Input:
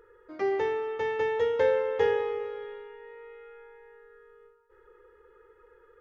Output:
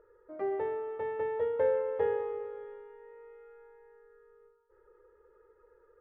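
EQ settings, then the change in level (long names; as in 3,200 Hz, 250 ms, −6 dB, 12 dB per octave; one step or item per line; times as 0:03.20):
low-pass filter 1,400 Hz 12 dB per octave
parametric band 610 Hz +12.5 dB 0.2 octaves
−5.5 dB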